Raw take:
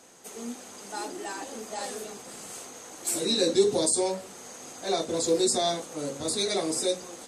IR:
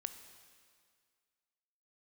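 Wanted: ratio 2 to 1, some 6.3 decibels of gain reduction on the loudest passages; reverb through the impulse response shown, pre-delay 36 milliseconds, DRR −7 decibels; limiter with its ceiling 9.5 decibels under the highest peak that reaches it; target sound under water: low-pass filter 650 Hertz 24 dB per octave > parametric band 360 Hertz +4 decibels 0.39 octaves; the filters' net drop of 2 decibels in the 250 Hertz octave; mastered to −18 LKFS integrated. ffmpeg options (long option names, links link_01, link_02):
-filter_complex "[0:a]equalizer=frequency=250:width_type=o:gain=-8,acompressor=threshold=-31dB:ratio=2,alimiter=level_in=3.5dB:limit=-24dB:level=0:latency=1,volume=-3.5dB,asplit=2[link_01][link_02];[1:a]atrim=start_sample=2205,adelay=36[link_03];[link_02][link_03]afir=irnorm=-1:irlink=0,volume=9.5dB[link_04];[link_01][link_04]amix=inputs=2:normalize=0,lowpass=frequency=650:width=0.5412,lowpass=frequency=650:width=1.3066,equalizer=frequency=360:width_type=o:width=0.39:gain=4,volume=14.5dB"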